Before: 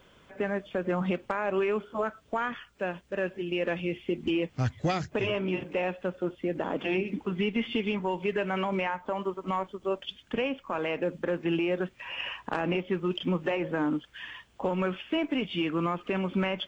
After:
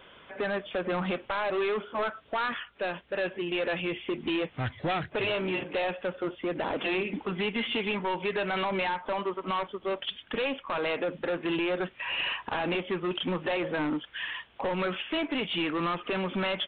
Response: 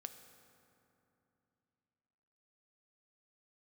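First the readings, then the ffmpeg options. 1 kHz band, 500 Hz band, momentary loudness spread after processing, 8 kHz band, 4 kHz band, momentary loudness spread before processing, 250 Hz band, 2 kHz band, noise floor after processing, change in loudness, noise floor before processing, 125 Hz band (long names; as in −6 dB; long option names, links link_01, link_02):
+1.5 dB, −0.5 dB, 4 LU, can't be measured, +4.5 dB, 5 LU, −2.5 dB, +2.5 dB, −56 dBFS, 0.0 dB, −60 dBFS, −4.5 dB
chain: -af "lowshelf=frequency=320:gain=-11.5,aresample=8000,asoftclip=type=tanh:threshold=-33dB,aresample=44100,volume=8dB"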